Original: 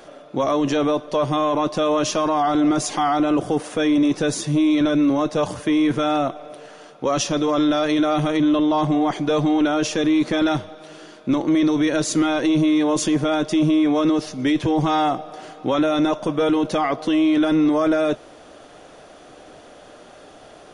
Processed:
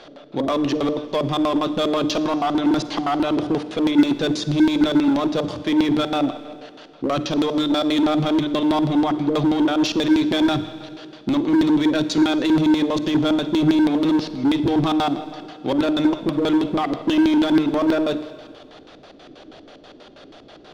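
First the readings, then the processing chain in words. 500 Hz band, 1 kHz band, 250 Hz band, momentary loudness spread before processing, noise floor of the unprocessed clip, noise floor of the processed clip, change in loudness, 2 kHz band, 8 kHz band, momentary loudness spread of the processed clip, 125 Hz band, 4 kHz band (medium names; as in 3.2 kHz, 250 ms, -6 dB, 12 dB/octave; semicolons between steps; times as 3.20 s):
-2.0 dB, -2.5 dB, +1.0 dB, 6 LU, -45 dBFS, -45 dBFS, 0.0 dB, -1.0 dB, -8.5 dB, 7 LU, -0.5 dB, +2.0 dB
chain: hum notches 60/120/180/240/300 Hz; LFO low-pass square 6.2 Hz 310–4100 Hz; in parallel at -5 dB: wavefolder -16.5 dBFS; on the sum: Schroeder reverb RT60 1.9 s, DRR 12.5 dB; trim -4 dB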